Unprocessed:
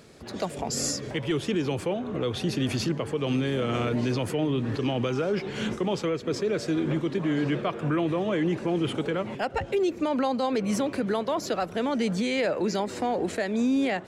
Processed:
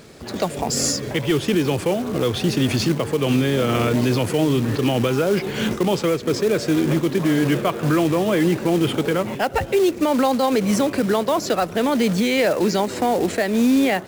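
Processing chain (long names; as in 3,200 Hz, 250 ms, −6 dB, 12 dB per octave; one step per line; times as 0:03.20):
floating-point word with a short mantissa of 2 bits
tape wow and flutter 25 cents
level +7.5 dB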